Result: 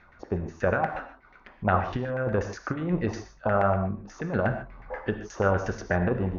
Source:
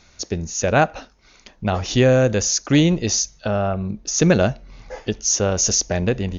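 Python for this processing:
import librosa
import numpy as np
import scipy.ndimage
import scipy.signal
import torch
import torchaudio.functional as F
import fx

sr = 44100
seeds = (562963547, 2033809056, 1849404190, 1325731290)

y = fx.over_compress(x, sr, threshold_db=-18.0, ratio=-0.5)
y = fx.filter_lfo_lowpass(y, sr, shape='saw_down', hz=8.3, low_hz=850.0, high_hz=1900.0, q=4.1)
y = fx.rev_gated(y, sr, seeds[0], gate_ms=170, shape='flat', drr_db=7.0)
y = y * 10.0 ** (-7.0 / 20.0)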